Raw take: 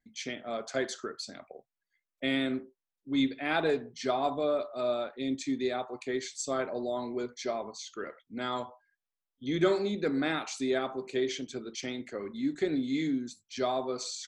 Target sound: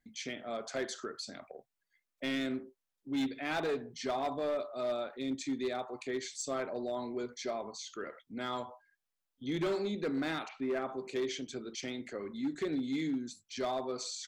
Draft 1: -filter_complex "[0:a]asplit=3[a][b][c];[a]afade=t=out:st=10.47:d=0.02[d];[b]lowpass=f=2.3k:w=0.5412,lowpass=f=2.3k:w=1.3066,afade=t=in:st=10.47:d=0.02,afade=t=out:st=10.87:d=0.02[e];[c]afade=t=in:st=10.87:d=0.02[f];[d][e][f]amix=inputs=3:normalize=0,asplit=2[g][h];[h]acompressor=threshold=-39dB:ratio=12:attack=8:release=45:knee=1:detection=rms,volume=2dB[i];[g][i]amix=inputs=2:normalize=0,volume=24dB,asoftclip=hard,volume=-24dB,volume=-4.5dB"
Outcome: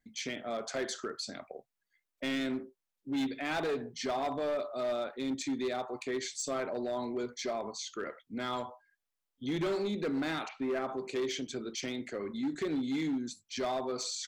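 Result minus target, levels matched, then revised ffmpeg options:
compressor: peak gain reduction -10.5 dB
-filter_complex "[0:a]asplit=3[a][b][c];[a]afade=t=out:st=10.47:d=0.02[d];[b]lowpass=f=2.3k:w=0.5412,lowpass=f=2.3k:w=1.3066,afade=t=in:st=10.47:d=0.02,afade=t=out:st=10.87:d=0.02[e];[c]afade=t=in:st=10.87:d=0.02[f];[d][e][f]amix=inputs=3:normalize=0,asplit=2[g][h];[h]acompressor=threshold=-50.5dB:ratio=12:attack=8:release=45:knee=1:detection=rms,volume=2dB[i];[g][i]amix=inputs=2:normalize=0,volume=24dB,asoftclip=hard,volume=-24dB,volume=-4.5dB"

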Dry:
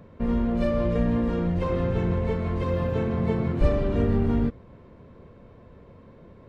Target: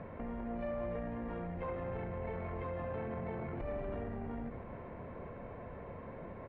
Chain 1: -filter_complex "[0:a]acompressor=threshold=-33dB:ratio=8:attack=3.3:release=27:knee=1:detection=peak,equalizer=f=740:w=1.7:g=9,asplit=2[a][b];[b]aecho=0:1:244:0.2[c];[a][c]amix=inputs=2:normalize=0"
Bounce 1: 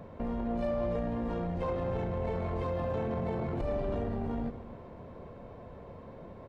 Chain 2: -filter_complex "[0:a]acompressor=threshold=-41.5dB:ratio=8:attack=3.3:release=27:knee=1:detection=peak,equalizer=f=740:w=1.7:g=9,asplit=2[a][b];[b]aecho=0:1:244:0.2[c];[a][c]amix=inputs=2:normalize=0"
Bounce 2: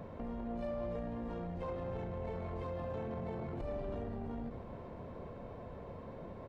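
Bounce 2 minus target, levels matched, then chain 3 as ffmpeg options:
2000 Hz band -5.0 dB
-filter_complex "[0:a]acompressor=threshold=-41.5dB:ratio=8:attack=3.3:release=27:knee=1:detection=peak,lowpass=f=2.1k:t=q:w=2.1,equalizer=f=740:w=1.7:g=9,asplit=2[a][b];[b]aecho=0:1:244:0.2[c];[a][c]amix=inputs=2:normalize=0"

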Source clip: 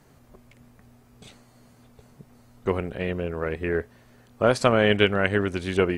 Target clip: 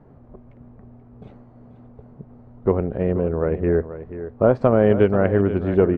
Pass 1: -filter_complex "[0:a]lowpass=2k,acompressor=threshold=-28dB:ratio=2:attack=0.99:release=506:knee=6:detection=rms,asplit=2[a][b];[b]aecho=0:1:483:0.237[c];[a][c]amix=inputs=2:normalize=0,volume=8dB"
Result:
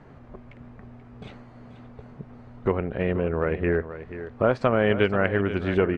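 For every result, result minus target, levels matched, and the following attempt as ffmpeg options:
2000 Hz band +10.0 dB; compressor: peak gain reduction +6.5 dB
-filter_complex "[0:a]lowpass=810,acompressor=threshold=-28dB:ratio=2:attack=0.99:release=506:knee=6:detection=rms,asplit=2[a][b];[b]aecho=0:1:483:0.237[c];[a][c]amix=inputs=2:normalize=0,volume=8dB"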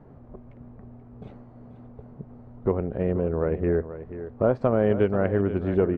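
compressor: peak gain reduction +6 dB
-filter_complex "[0:a]lowpass=810,acompressor=threshold=-16.5dB:ratio=2:attack=0.99:release=506:knee=6:detection=rms,asplit=2[a][b];[b]aecho=0:1:483:0.237[c];[a][c]amix=inputs=2:normalize=0,volume=8dB"

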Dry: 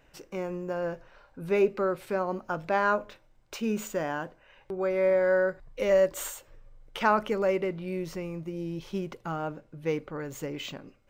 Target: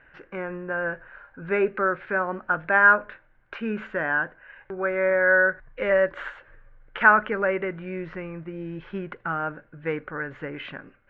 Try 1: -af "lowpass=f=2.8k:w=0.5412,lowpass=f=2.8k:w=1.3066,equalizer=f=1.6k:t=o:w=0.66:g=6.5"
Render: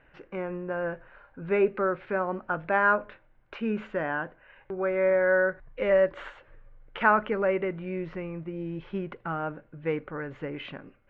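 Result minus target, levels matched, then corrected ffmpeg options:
2000 Hz band -4.5 dB
-af "lowpass=f=2.8k:w=0.5412,lowpass=f=2.8k:w=1.3066,equalizer=f=1.6k:t=o:w=0.66:g=16.5"

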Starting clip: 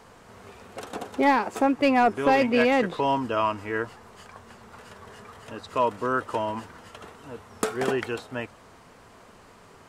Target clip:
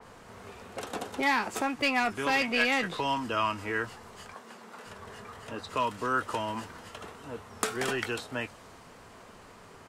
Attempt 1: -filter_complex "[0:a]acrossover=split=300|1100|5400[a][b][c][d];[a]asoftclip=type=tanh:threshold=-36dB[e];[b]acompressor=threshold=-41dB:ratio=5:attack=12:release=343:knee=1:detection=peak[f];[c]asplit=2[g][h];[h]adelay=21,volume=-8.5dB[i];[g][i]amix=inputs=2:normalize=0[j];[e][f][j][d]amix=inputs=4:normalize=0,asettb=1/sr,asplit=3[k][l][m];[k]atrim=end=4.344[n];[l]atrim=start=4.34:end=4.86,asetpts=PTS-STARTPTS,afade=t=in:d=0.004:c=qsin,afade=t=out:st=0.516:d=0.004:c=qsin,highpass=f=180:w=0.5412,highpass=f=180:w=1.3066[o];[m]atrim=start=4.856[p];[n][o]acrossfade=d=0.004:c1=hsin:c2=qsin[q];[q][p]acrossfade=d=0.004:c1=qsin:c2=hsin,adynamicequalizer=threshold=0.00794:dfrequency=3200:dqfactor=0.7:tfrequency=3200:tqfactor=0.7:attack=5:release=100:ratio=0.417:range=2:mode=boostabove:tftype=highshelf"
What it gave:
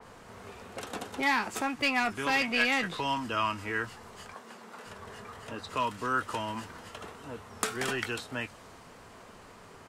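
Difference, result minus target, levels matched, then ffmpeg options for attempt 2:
compressor: peak gain reduction +5 dB
-filter_complex "[0:a]acrossover=split=300|1100|5400[a][b][c][d];[a]asoftclip=type=tanh:threshold=-36dB[e];[b]acompressor=threshold=-35dB:ratio=5:attack=12:release=343:knee=1:detection=peak[f];[c]asplit=2[g][h];[h]adelay=21,volume=-8.5dB[i];[g][i]amix=inputs=2:normalize=0[j];[e][f][j][d]amix=inputs=4:normalize=0,asettb=1/sr,asplit=3[k][l][m];[k]atrim=end=4.344[n];[l]atrim=start=4.34:end=4.86,asetpts=PTS-STARTPTS,afade=t=in:d=0.004:c=qsin,afade=t=out:st=0.516:d=0.004:c=qsin,highpass=f=180:w=0.5412,highpass=f=180:w=1.3066[o];[m]atrim=start=4.856[p];[n][o]acrossfade=d=0.004:c1=hsin:c2=qsin[q];[q][p]acrossfade=d=0.004:c1=qsin:c2=hsin,adynamicequalizer=threshold=0.00794:dfrequency=3200:dqfactor=0.7:tfrequency=3200:tqfactor=0.7:attack=5:release=100:ratio=0.417:range=2:mode=boostabove:tftype=highshelf"

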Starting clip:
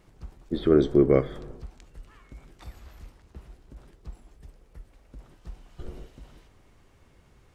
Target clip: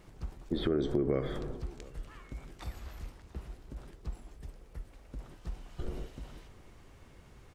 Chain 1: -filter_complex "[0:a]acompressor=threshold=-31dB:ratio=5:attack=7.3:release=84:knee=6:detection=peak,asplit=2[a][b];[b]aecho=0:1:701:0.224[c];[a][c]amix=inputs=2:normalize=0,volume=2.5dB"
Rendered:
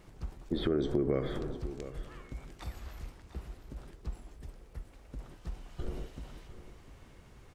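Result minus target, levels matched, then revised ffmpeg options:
echo-to-direct +9.5 dB
-filter_complex "[0:a]acompressor=threshold=-31dB:ratio=5:attack=7.3:release=84:knee=6:detection=peak,asplit=2[a][b];[b]aecho=0:1:701:0.075[c];[a][c]amix=inputs=2:normalize=0,volume=2.5dB"

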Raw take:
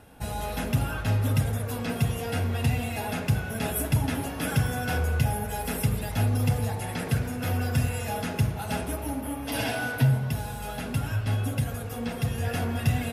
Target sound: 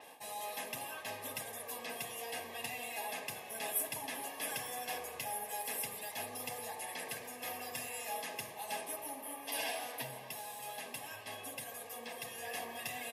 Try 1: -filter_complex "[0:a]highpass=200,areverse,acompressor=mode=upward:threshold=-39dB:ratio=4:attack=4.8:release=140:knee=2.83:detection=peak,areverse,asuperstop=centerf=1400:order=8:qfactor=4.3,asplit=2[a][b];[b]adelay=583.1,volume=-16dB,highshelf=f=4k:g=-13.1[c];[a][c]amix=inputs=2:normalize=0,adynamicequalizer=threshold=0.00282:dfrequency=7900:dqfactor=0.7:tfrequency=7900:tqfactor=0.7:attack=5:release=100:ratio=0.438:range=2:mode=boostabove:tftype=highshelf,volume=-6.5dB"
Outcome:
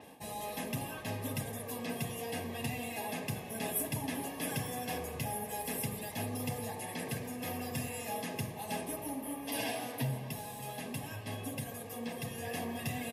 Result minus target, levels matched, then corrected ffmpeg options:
250 Hz band +12.0 dB
-filter_complex "[0:a]highpass=620,areverse,acompressor=mode=upward:threshold=-39dB:ratio=4:attack=4.8:release=140:knee=2.83:detection=peak,areverse,asuperstop=centerf=1400:order=8:qfactor=4.3,asplit=2[a][b];[b]adelay=583.1,volume=-16dB,highshelf=f=4k:g=-13.1[c];[a][c]amix=inputs=2:normalize=0,adynamicequalizer=threshold=0.00282:dfrequency=7900:dqfactor=0.7:tfrequency=7900:tqfactor=0.7:attack=5:release=100:ratio=0.438:range=2:mode=boostabove:tftype=highshelf,volume=-6.5dB"

